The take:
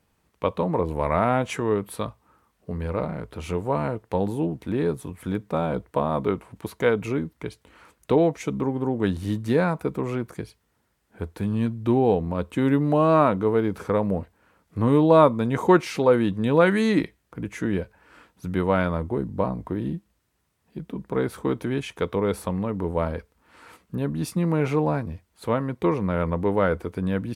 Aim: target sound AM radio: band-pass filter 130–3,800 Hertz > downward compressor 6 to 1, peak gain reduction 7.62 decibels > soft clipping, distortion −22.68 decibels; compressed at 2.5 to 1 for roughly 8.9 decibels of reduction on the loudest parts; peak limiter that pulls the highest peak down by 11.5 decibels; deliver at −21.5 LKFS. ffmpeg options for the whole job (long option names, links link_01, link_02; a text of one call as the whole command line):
ffmpeg -i in.wav -af "acompressor=threshold=-25dB:ratio=2.5,alimiter=limit=-23.5dB:level=0:latency=1,highpass=130,lowpass=3800,acompressor=threshold=-34dB:ratio=6,asoftclip=threshold=-27.5dB,volume=19.5dB" out.wav